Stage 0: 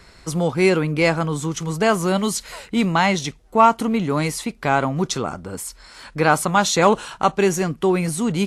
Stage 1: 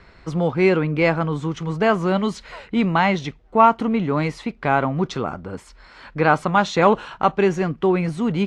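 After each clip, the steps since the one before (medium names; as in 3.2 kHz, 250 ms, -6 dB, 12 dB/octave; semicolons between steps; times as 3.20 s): low-pass 2.9 kHz 12 dB/octave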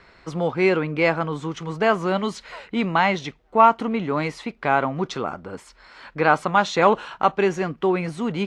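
bass shelf 200 Hz -10 dB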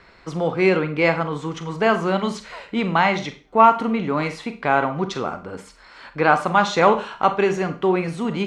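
Schroeder reverb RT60 0.35 s, combs from 32 ms, DRR 9 dB; trim +1 dB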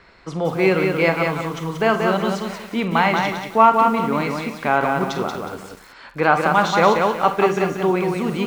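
bit-crushed delay 183 ms, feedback 35%, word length 7-bit, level -4 dB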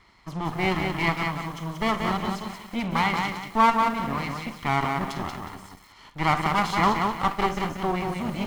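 comb filter that takes the minimum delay 0.96 ms; trim -6 dB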